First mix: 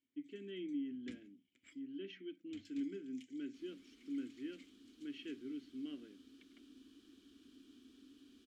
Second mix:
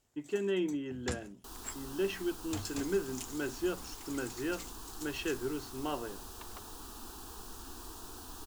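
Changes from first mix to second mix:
second sound: entry -2.10 s; master: remove vowel filter i

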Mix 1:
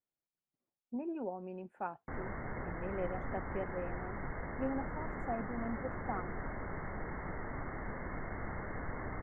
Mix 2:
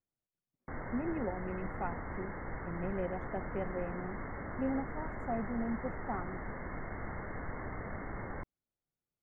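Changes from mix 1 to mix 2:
speech: add low shelf 190 Hz +10.5 dB; background: entry -1.40 s

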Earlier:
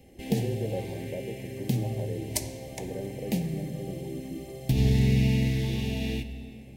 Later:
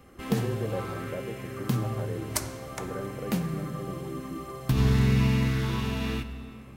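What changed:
first sound: remove Butterworth band-stop 1000 Hz, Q 6; master: remove Butterworth band-stop 1300 Hz, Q 1.1

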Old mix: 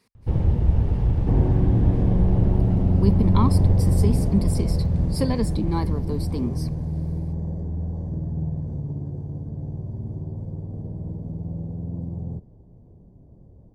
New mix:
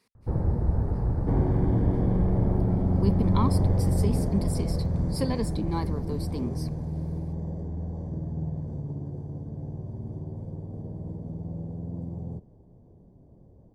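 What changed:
speech -3.0 dB; first sound: add steep low-pass 1700 Hz 36 dB/oct; master: add low shelf 180 Hz -7 dB

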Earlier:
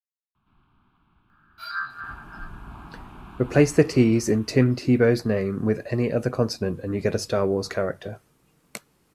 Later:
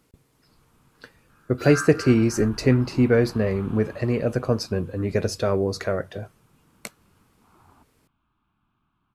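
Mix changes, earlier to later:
speech: entry -1.90 s; master: add bell 95 Hz +5 dB 0.31 oct

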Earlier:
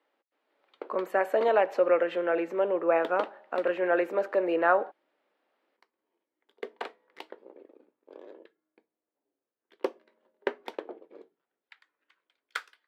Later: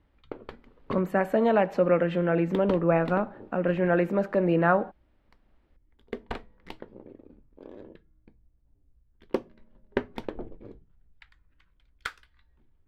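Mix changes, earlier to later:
background: entry -0.50 s; master: remove HPF 370 Hz 24 dB/oct

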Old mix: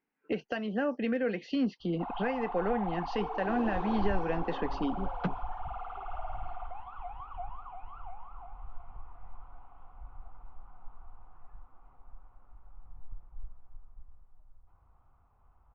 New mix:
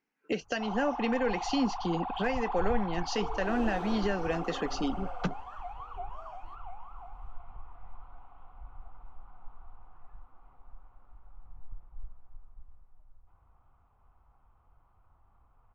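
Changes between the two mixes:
speech: remove air absorption 110 m; first sound: entry -1.40 s; master: remove air absorption 200 m

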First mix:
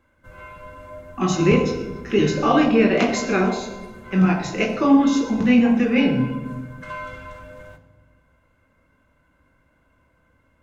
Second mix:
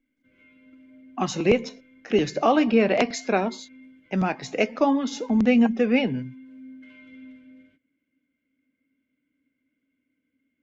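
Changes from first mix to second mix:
background: add vowel filter i; reverb: off

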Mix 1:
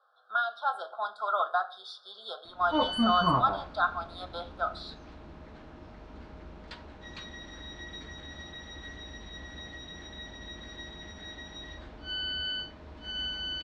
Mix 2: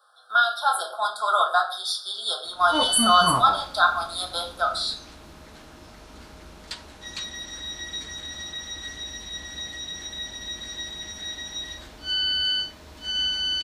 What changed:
speech: send +11.0 dB; master: remove tape spacing loss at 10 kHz 32 dB

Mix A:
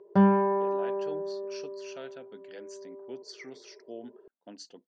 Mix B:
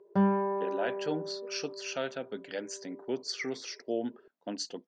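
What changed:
speech +10.0 dB; background -5.0 dB

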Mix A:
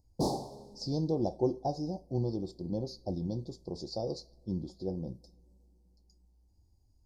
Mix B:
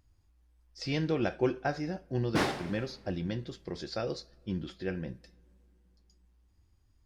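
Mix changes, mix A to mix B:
background: entry +2.15 s; master: remove elliptic band-stop 870–4500 Hz, stop band 40 dB

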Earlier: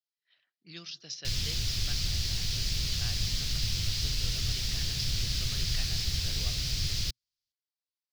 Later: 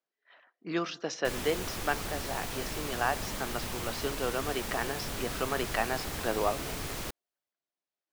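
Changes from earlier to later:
background -10.0 dB; master: remove EQ curve 120 Hz 0 dB, 240 Hz -18 dB, 970 Hz -27 dB, 4900 Hz +5 dB, 8800 Hz -14 dB

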